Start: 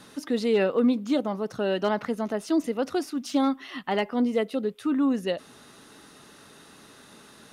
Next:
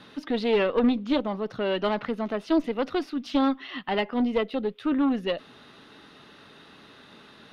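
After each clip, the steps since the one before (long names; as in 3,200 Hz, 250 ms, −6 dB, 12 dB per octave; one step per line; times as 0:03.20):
harmonic generator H 4 −13 dB, 6 −18 dB, 8 −30 dB, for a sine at −13.5 dBFS
high shelf with overshoot 5,300 Hz −14 dB, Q 1.5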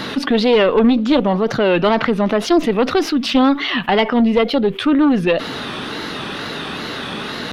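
tape wow and flutter 120 cents
envelope flattener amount 50%
level +8 dB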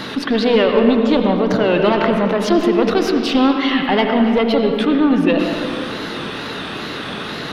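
convolution reverb RT60 2.1 s, pre-delay 75 ms, DRR 3 dB
level −2 dB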